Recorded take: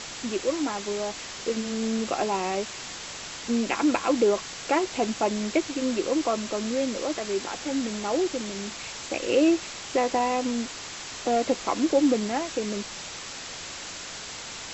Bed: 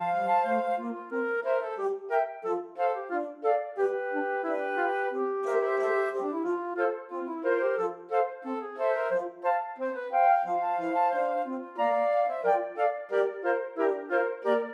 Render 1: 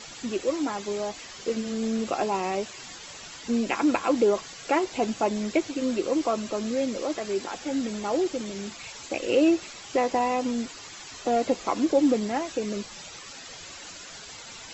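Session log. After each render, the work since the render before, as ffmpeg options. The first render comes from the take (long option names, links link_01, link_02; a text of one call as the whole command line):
ffmpeg -i in.wav -af "afftdn=noise_reduction=11:noise_floor=-39" out.wav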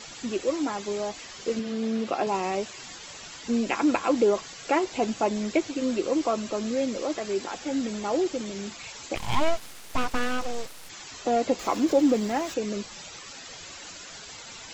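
ffmpeg -i in.wav -filter_complex "[0:a]asettb=1/sr,asplit=3[link_01][link_02][link_03];[link_01]atrim=end=1.594[link_04];[link_02]atrim=start=1.59:end=2.27,asetpts=PTS-STARTPTS,afade=type=in:duration=0.004:curve=qsin,afade=type=out:start_time=0.676:duration=0.004:curve=qsin,highpass=120,lowpass=4900[link_05];[link_03]atrim=start=2.266[link_06];[link_04][link_05]acrossfade=duration=0.004:curve1=hsin:curve2=qsin[link_07];[link_07][link_06]acrossfade=duration=0.004:curve1=qsin:curve2=hsin,asplit=3[link_08][link_09][link_10];[link_08]afade=type=out:start_time=9.15:duration=0.02[link_11];[link_09]aeval=exprs='abs(val(0))':channel_layout=same,afade=type=in:start_time=9.15:duration=0.02,afade=type=out:start_time=10.88:duration=0.02[link_12];[link_10]afade=type=in:start_time=10.88:duration=0.02[link_13];[link_11][link_12][link_13]amix=inputs=3:normalize=0,asettb=1/sr,asplit=3[link_14][link_15][link_16];[link_14]atrim=end=11.594[link_17];[link_15]atrim=start=11.59:end=12.54,asetpts=PTS-STARTPTS,afade=type=in:duration=0.004:curve=qsin,afade=type=out:start_time=0.946:duration=0.004:curve=qsin,aeval=exprs='val(0)+0.5*0.0106*sgn(val(0))':channel_layout=same[link_18];[link_16]atrim=start=12.536[link_19];[link_17][link_18]acrossfade=duration=0.004:curve1=hsin:curve2=qsin[link_20];[link_20][link_19]acrossfade=duration=0.004:curve1=qsin:curve2=hsin" out.wav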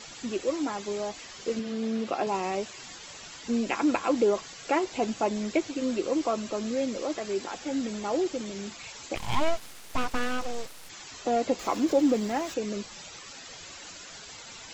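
ffmpeg -i in.wav -af "volume=-2dB" out.wav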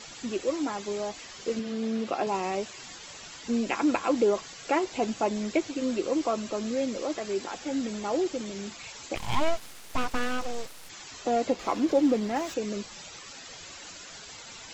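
ffmpeg -i in.wav -filter_complex "[0:a]asettb=1/sr,asplit=3[link_01][link_02][link_03];[link_01]atrim=end=11.514[link_04];[link_02]atrim=start=11.51:end=12.36,asetpts=PTS-STARTPTS,afade=type=in:duration=0.004:curve=qsin,afade=type=out:start_time=0.846:duration=0.004:curve=qsin,adynamicsmooth=sensitivity=6.5:basefreq=5800[link_05];[link_03]atrim=start=12.356[link_06];[link_04][link_05]acrossfade=duration=0.004:curve1=hsin:curve2=qsin[link_07];[link_07][link_06]acrossfade=duration=0.004:curve1=qsin:curve2=hsin" out.wav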